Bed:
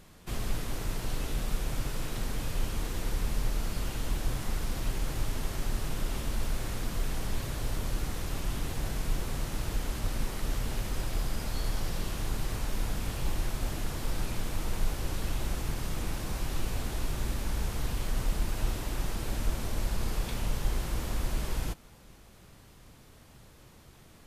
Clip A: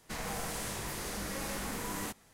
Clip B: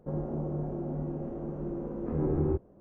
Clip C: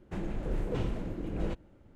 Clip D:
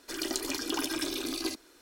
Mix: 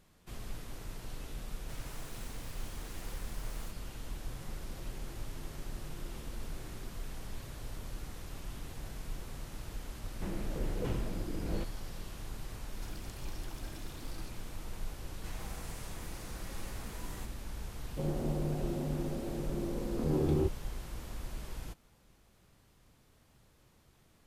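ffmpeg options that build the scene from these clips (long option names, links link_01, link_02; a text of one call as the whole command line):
ffmpeg -i bed.wav -i cue0.wav -i cue1.wav -i cue2.wav -i cue3.wav -filter_complex "[1:a]asplit=2[link_01][link_02];[2:a]asplit=2[link_03][link_04];[0:a]volume=-10.5dB[link_05];[link_01]aeval=exprs='abs(val(0))':channel_layout=same[link_06];[link_03]acompressor=threshold=-39dB:ratio=6:attack=3.2:release=140:knee=1:detection=peak[link_07];[4:a]acompressor=threshold=-47dB:ratio=6:attack=3.2:release=140:knee=1:detection=peak[link_08];[link_04]aeval=exprs='val(0)*gte(abs(val(0)),0.0015)':channel_layout=same[link_09];[link_06]atrim=end=2.33,asetpts=PTS-STARTPTS,volume=-10.5dB,afade=type=in:duration=0.004:curve=hsin,afade=type=out:start_time=2.326:duration=0.004:curve=hsin,adelay=1590[link_10];[link_07]atrim=end=2.8,asetpts=PTS-STARTPTS,volume=-12.5dB,afade=type=in:duration=0.004:curve=hsin,afade=type=out:start_time=2.796:duration=0.004:curve=hsin,adelay=190953S[link_11];[3:a]atrim=end=1.95,asetpts=PTS-STARTPTS,volume=-3dB,afade=type=in:duration=0.004:curve=hsin,afade=type=out:start_time=1.946:duration=0.004:curve=hsin,adelay=445410S[link_12];[link_08]atrim=end=1.81,asetpts=PTS-STARTPTS,volume=-5dB,afade=type=in:duration=0.004:curve=hsin,afade=type=out:start_time=1.806:duration=0.004:curve=hsin,adelay=12740[link_13];[link_02]atrim=end=2.33,asetpts=PTS-STARTPTS,volume=-11.5dB,afade=type=in:duration=0.004:curve=hsin,afade=type=out:start_time=2.326:duration=0.004:curve=hsin,adelay=15140[link_14];[link_09]atrim=end=2.8,asetpts=PTS-STARTPTS,volume=-1.5dB,afade=type=in:duration=0.004:curve=hsin,afade=type=out:start_time=2.796:duration=0.004:curve=hsin,adelay=17910[link_15];[link_05][link_10][link_11][link_12][link_13][link_14][link_15]amix=inputs=7:normalize=0" out.wav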